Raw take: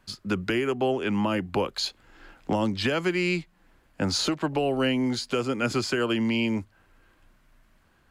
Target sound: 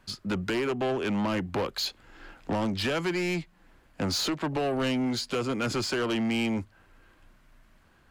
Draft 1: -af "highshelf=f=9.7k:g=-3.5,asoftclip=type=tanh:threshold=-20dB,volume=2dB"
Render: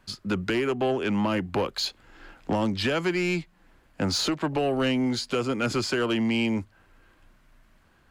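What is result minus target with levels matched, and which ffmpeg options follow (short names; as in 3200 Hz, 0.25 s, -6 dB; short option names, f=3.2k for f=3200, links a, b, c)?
soft clip: distortion -7 dB
-af "highshelf=f=9.7k:g=-3.5,asoftclip=type=tanh:threshold=-26dB,volume=2dB"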